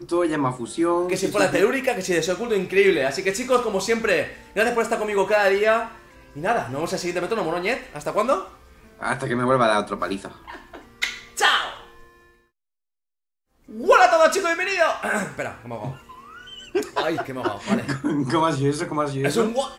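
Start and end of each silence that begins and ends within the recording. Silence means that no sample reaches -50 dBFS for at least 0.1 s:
12.40–13.63 s

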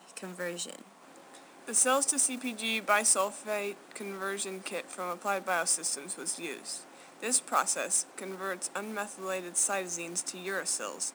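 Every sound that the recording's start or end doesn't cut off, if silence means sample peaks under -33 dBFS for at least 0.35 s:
1.68–6.77 s

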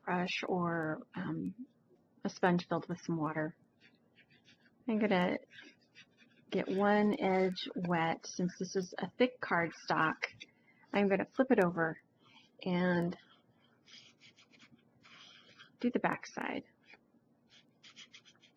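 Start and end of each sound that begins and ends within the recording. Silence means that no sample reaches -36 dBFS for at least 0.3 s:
2.25–3.48 s
4.88–5.36 s
6.52–10.42 s
10.94–11.93 s
12.63–13.13 s
15.82–16.59 s

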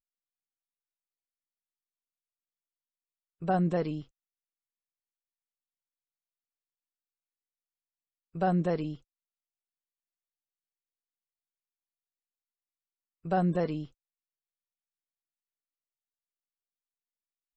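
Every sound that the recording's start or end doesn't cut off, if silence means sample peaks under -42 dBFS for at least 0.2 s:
3.42–4.02 s
8.35–8.96 s
13.25–13.86 s

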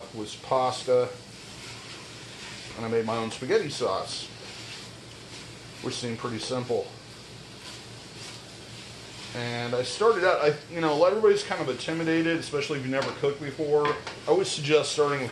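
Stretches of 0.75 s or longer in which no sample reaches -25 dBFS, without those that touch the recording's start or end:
1.06–2.79 s
4.16–5.84 s
6.81–9.35 s

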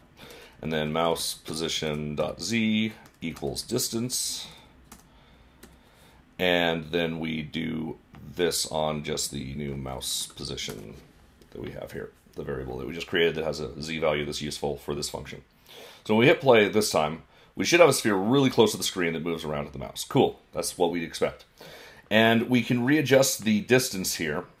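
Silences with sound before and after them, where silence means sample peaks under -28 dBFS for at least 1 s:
4.43–6.39 s

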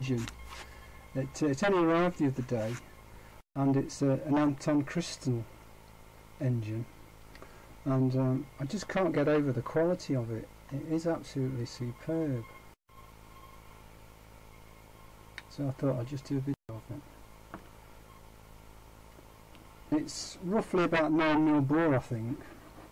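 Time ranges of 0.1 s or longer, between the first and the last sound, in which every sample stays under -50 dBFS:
3.41–3.56 s
12.74–12.90 s
16.54–16.69 s

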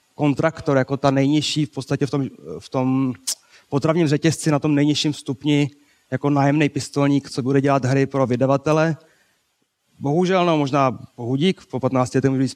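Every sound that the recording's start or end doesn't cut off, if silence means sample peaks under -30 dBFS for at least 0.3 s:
3.73–5.68 s
6.12–8.95 s

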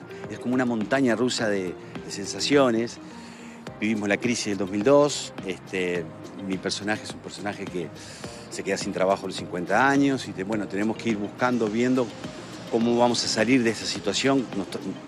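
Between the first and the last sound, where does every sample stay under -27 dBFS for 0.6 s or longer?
2.91–3.67 s

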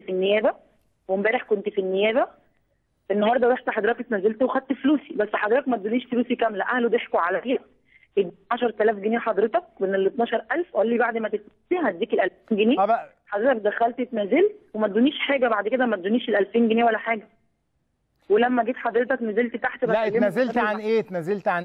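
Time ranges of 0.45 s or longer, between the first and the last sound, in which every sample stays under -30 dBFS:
0.51–1.09 s
2.25–3.10 s
7.57–8.17 s
17.19–18.30 s

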